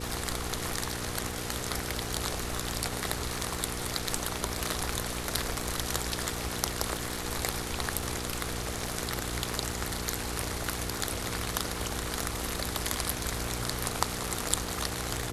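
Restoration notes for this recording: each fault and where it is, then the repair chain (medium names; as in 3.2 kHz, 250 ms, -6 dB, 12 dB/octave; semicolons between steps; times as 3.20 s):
crackle 53 per s -39 dBFS
hum 60 Hz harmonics 8 -39 dBFS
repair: de-click; de-hum 60 Hz, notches 8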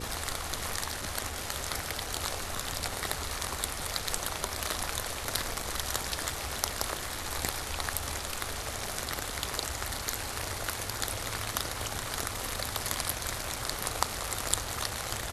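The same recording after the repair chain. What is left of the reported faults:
nothing left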